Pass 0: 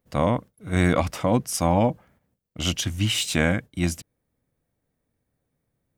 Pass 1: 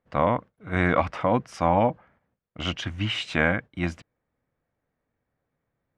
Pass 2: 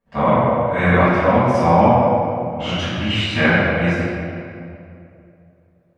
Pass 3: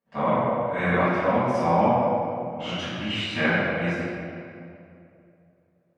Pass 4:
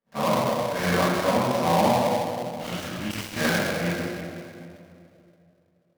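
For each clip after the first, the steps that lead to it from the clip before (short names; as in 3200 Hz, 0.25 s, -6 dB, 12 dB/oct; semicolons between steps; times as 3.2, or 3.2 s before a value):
LPF 1500 Hz 12 dB/oct; tilt shelf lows -7.5 dB, about 810 Hz; gain +2.5 dB
reverb RT60 2.6 s, pre-delay 4 ms, DRR -12.5 dB; gain -6 dB
HPF 140 Hz 12 dB/oct; gain -7 dB
switching dead time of 0.15 ms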